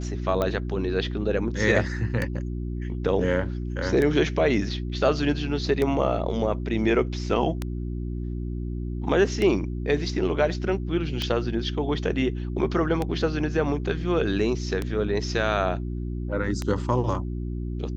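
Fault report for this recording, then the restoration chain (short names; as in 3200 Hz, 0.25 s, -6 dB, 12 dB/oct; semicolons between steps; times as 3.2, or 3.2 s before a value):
hum 60 Hz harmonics 6 -30 dBFS
tick 33 1/3 rpm -13 dBFS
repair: de-click; de-hum 60 Hz, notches 6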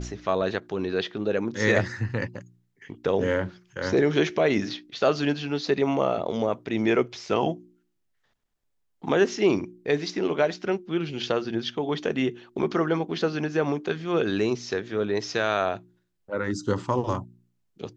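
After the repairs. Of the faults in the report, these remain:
none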